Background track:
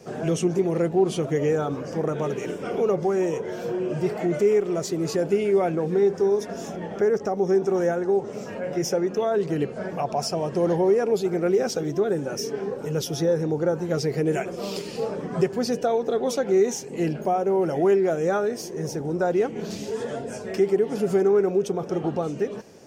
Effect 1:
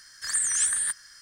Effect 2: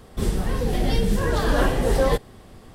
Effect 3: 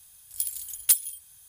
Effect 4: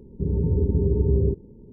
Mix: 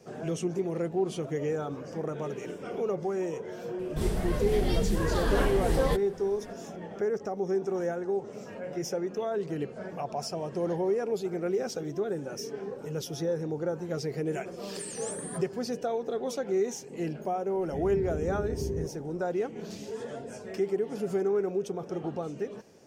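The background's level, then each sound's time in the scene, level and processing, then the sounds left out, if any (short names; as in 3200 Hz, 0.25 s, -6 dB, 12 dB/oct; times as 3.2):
background track -8 dB
3.79 add 2 -6.5 dB
14.46 add 1 -16 dB
17.53 add 4 -7 dB + bell 77 Hz -8.5 dB 2.5 oct
not used: 3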